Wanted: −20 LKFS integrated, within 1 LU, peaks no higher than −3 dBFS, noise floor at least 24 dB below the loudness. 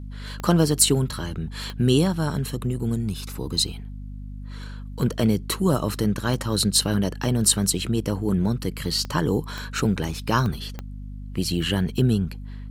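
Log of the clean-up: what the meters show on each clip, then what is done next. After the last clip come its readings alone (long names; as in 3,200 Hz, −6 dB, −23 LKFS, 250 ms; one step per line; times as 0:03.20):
number of clicks 7; mains hum 50 Hz; hum harmonics up to 250 Hz; level of the hum −33 dBFS; integrated loudness −23.5 LKFS; sample peak −3.5 dBFS; target loudness −20.0 LKFS
→ click removal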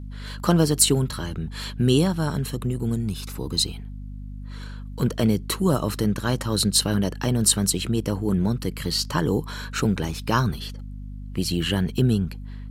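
number of clicks 0; mains hum 50 Hz; hum harmonics up to 250 Hz; level of the hum −33 dBFS
→ mains-hum notches 50/100/150/200/250 Hz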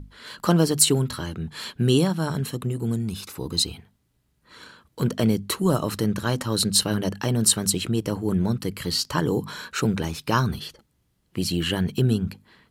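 mains hum none found; integrated loudness −24.0 LKFS; sample peak −3.5 dBFS; target loudness −20.0 LKFS
→ level +4 dB
brickwall limiter −3 dBFS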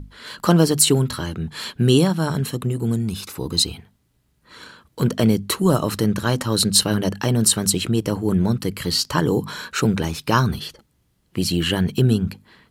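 integrated loudness −20.0 LKFS; sample peak −3.0 dBFS; background noise floor −65 dBFS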